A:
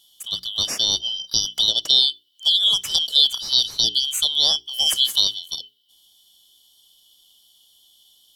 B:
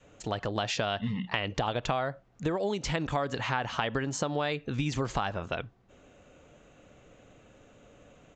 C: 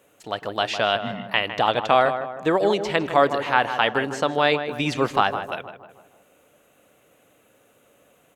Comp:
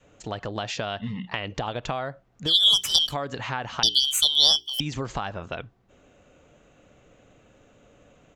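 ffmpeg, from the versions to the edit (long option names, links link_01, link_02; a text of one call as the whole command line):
ffmpeg -i take0.wav -i take1.wav -filter_complex "[0:a]asplit=2[link_01][link_02];[1:a]asplit=3[link_03][link_04][link_05];[link_03]atrim=end=2.55[link_06];[link_01]atrim=start=2.45:end=3.15[link_07];[link_04]atrim=start=3.05:end=3.832[link_08];[link_02]atrim=start=3.828:end=4.802[link_09];[link_05]atrim=start=4.798[link_10];[link_06][link_07]acrossfade=duration=0.1:curve1=tri:curve2=tri[link_11];[link_11][link_08]acrossfade=duration=0.1:curve1=tri:curve2=tri[link_12];[link_12][link_09]acrossfade=duration=0.004:curve1=hsin:curve2=hsin[link_13];[link_13][link_10]acrossfade=duration=0.004:curve1=hsin:curve2=hsin" out.wav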